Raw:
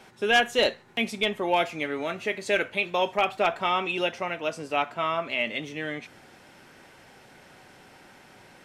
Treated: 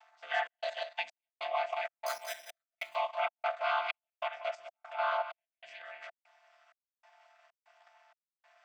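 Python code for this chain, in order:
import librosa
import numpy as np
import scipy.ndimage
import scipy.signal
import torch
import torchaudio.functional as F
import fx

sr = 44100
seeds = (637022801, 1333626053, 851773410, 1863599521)

y = fx.chord_vocoder(x, sr, chord='minor triad', root=50)
y = fx.high_shelf(y, sr, hz=4000.0, db=6.0, at=(0.71, 1.32))
y = fx.resample_bad(y, sr, factor=8, down='filtered', up='hold', at=(2.06, 2.77))
y = y + 10.0 ** (-8.0 / 20.0) * np.pad(y, (int(186 * sr / 1000.0), 0))[:len(y)]
y = fx.level_steps(y, sr, step_db=10)
y = fx.step_gate(y, sr, bpm=96, pattern='xxx.xxx..', floor_db=-60.0, edge_ms=4.5)
y = scipy.signal.sosfilt(scipy.signal.ellip(4, 1.0, 40, 670.0, 'highpass', fs=sr, output='sos'), y)
y = F.gain(torch.from_numpy(y), 2.0).numpy()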